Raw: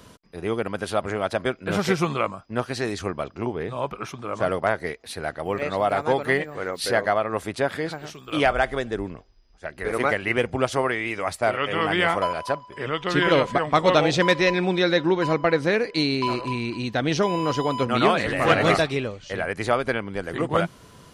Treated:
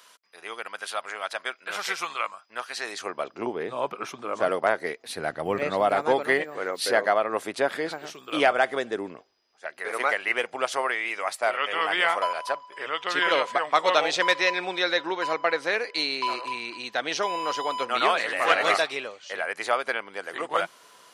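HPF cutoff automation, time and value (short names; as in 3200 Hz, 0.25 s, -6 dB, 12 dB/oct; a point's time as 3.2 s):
2.7 s 1100 Hz
3.41 s 300 Hz
4.84 s 300 Hz
5.43 s 120 Hz
6.29 s 310 Hz
9.13 s 310 Hz
9.72 s 660 Hz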